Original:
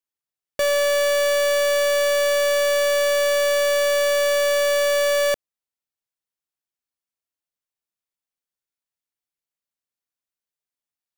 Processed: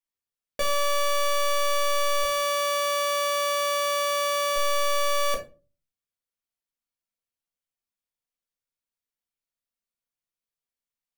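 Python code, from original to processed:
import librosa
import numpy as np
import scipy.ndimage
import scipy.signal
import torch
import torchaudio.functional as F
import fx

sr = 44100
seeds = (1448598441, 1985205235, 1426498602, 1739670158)

y = fx.highpass(x, sr, hz=100.0, slope=24, at=(2.23, 4.56))
y = fx.room_shoebox(y, sr, seeds[0], volume_m3=130.0, walls='furnished', distance_m=1.7)
y = F.gain(torch.from_numpy(y), -6.0).numpy()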